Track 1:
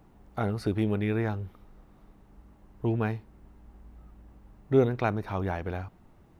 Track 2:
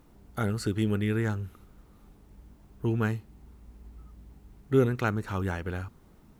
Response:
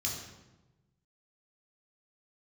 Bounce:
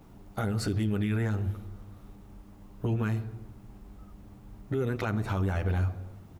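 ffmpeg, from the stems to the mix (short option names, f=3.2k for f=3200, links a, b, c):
-filter_complex "[0:a]acompressor=threshold=-31dB:ratio=6,volume=1dB,asplit=2[a][b];[b]volume=-9dB[c];[1:a]adelay=9.8,volume=0.5dB[d];[2:a]atrim=start_sample=2205[e];[c][e]afir=irnorm=-1:irlink=0[f];[a][d][f]amix=inputs=3:normalize=0,alimiter=limit=-21dB:level=0:latency=1:release=62"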